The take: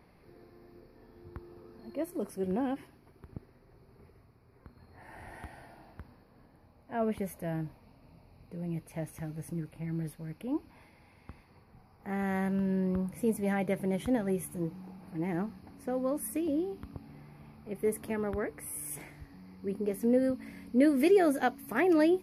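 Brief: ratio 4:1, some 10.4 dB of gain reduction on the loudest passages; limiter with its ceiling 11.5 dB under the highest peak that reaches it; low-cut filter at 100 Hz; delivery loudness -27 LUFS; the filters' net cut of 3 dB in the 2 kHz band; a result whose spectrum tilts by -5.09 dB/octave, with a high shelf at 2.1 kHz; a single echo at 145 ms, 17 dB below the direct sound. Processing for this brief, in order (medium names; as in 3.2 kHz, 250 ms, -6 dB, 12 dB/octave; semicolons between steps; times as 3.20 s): high-pass 100 Hz; peaking EQ 2 kHz -5.5 dB; treble shelf 2.1 kHz +3.5 dB; compression 4:1, threshold -32 dBFS; peak limiter -34 dBFS; delay 145 ms -17 dB; trim +16 dB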